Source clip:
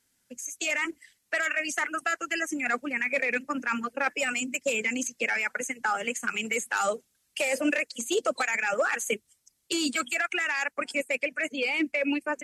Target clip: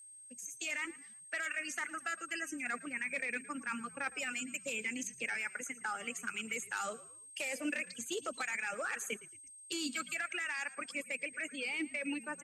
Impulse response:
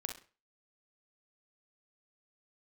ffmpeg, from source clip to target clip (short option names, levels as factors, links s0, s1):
-filter_complex "[0:a]equalizer=f=590:t=o:w=1.3:g=-6.5,aeval=exprs='val(0)+0.00708*sin(2*PI*8400*n/s)':c=same,asplit=4[s0][s1][s2][s3];[s1]adelay=112,afreqshift=-56,volume=0.119[s4];[s2]adelay=224,afreqshift=-112,volume=0.0452[s5];[s3]adelay=336,afreqshift=-168,volume=0.0172[s6];[s0][s4][s5][s6]amix=inputs=4:normalize=0,volume=0.355"